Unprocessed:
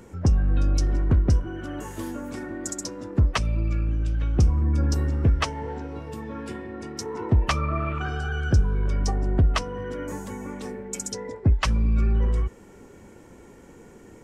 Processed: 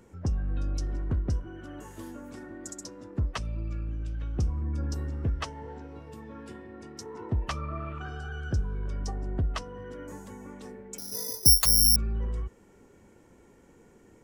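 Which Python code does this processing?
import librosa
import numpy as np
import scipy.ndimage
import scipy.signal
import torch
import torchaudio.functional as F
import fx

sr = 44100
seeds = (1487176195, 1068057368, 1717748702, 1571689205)

y = fx.dynamic_eq(x, sr, hz=2300.0, q=6.1, threshold_db=-56.0, ratio=4.0, max_db=-5)
y = fx.resample_bad(y, sr, factor=8, down='filtered', up='zero_stuff', at=(10.98, 11.96))
y = y * librosa.db_to_amplitude(-9.0)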